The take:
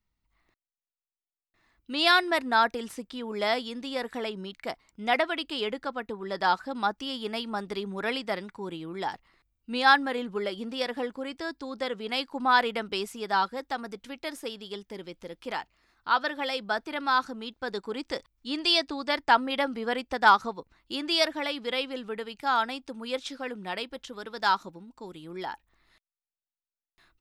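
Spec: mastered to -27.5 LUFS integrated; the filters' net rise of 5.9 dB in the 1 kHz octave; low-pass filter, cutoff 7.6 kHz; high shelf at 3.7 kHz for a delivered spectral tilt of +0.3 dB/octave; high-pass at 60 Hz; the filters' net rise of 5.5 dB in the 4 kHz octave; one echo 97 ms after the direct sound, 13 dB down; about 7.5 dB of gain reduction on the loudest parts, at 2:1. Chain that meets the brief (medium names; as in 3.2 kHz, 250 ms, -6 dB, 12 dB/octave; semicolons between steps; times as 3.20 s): high-pass 60 Hz; low-pass 7.6 kHz; peaking EQ 1 kHz +7 dB; treble shelf 3.7 kHz -3 dB; peaking EQ 4 kHz +8.5 dB; compression 2:1, threshold -23 dBFS; delay 97 ms -13 dB; trim +0.5 dB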